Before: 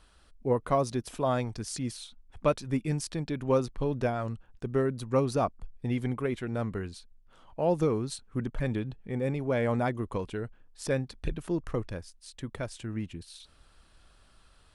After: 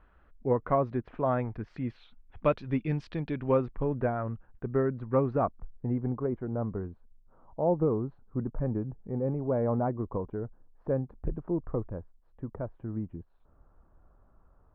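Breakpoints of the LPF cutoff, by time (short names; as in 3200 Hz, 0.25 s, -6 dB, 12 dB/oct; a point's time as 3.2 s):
LPF 24 dB/oct
1.51 s 2000 Hz
2.62 s 3200 Hz
3.23 s 3200 Hz
3.96 s 1800 Hz
5.35 s 1800 Hz
6.11 s 1100 Hz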